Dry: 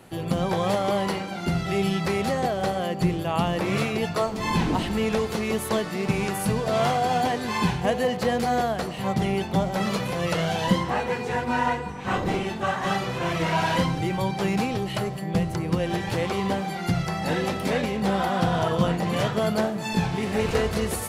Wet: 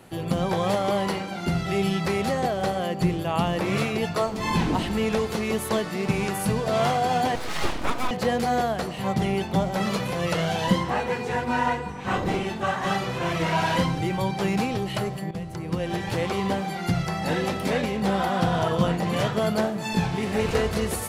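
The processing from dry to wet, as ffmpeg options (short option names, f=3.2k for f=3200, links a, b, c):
-filter_complex "[0:a]asettb=1/sr,asplit=3[a][b][c];[a]atrim=end=7.354[d];[b]atrim=start=7.35:end=8.11,asetpts=PTS-STARTPTS,afade=t=in:d=0.004:c=qsin,afade=t=out:st=0.756:d=0.004:c=qsin,aeval=exprs='abs(val(0))':c=same[e];[c]atrim=start=8.106[f];[d][e]acrossfade=d=0.004:c1=hsin:c2=qsin[g];[g][f]acrossfade=d=0.004:c1=qsin:c2=hsin,asplit=2[h][i];[h]atrim=end=15.31,asetpts=PTS-STARTPTS,afade=t=out:st=15.306:d=0.004:c=hsin:silence=0.251189[j];[i]atrim=start=15.31,asetpts=PTS-STARTPTS,afade=t=in:d=1.1:c=qsin:silence=0.251189[k];[j][k]concat=n=2:v=0:a=1"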